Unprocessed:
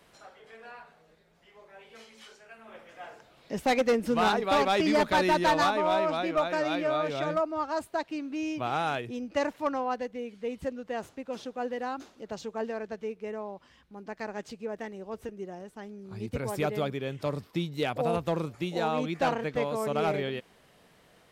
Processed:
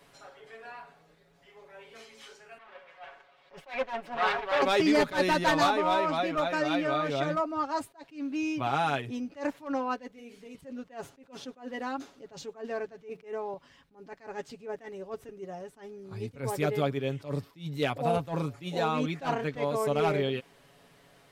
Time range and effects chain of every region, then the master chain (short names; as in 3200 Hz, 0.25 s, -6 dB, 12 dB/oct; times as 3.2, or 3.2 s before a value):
2.58–4.62 minimum comb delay 5.4 ms + three-band isolator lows -15 dB, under 470 Hz, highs -19 dB, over 3800 Hz
10.12–10.55 high shelf 5300 Hz +10 dB + compressor 12:1, threshold -41 dBFS + flutter echo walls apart 7.2 m, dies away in 0.27 s
13.09–13.54 HPF 150 Hz + gate -47 dBFS, range -20 dB + fast leveller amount 50%
whole clip: comb 7.2 ms, depth 59%; attack slew limiter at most 200 dB/s